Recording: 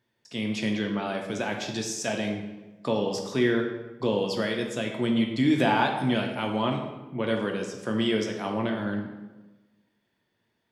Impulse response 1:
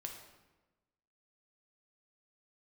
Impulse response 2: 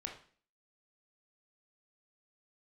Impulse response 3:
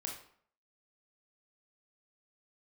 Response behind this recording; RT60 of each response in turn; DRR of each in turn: 1; 1.1, 0.45, 0.60 s; 1.5, 1.5, 0.0 dB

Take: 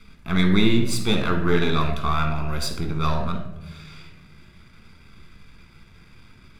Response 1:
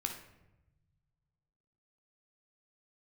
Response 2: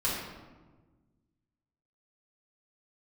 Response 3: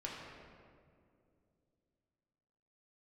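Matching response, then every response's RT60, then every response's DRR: 1; 0.95, 1.3, 2.4 s; 3.5, -8.5, -4.5 dB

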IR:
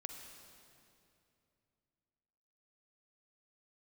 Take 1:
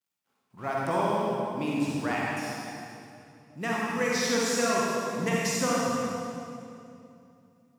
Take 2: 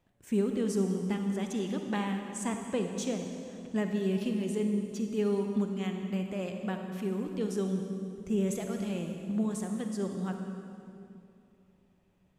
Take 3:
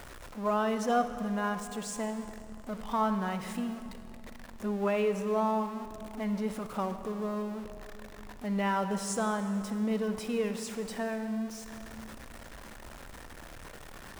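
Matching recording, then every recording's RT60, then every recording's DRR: 2; 2.7, 2.7, 2.7 s; -5.5, 4.0, 9.0 dB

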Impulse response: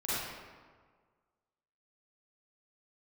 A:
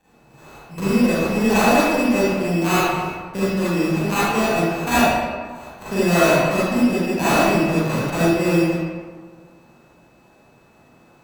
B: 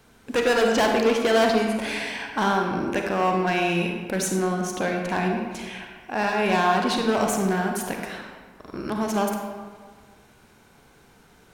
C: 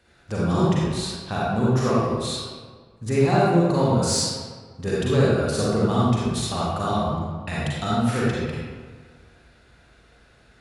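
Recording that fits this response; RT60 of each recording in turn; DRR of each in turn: A; 1.6, 1.6, 1.6 s; -12.0, 1.5, -7.5 dB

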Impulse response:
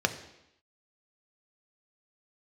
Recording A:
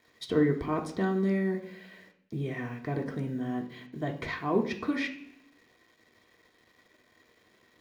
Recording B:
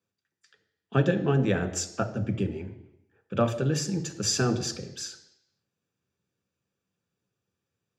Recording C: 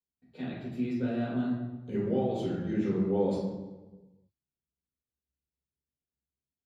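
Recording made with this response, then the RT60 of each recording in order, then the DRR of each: B; 0.60, 0.85, 1.2 s; 0.0, 6.5, -7.5 dB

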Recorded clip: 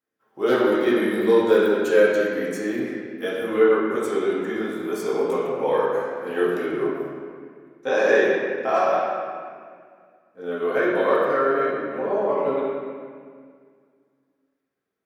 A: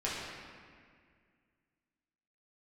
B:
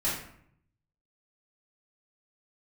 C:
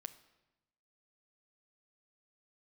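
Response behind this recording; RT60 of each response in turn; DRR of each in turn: A; 2.0, 0.65, 1.0 s; -8.0, -10.0, 10.0 dB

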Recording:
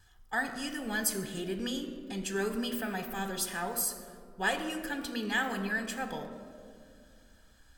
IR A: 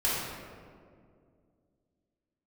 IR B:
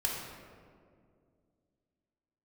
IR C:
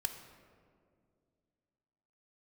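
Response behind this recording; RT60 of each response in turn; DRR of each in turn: C; 2.2, 2.2, 2.2 s; -9.0, -2.5, 6.0 dB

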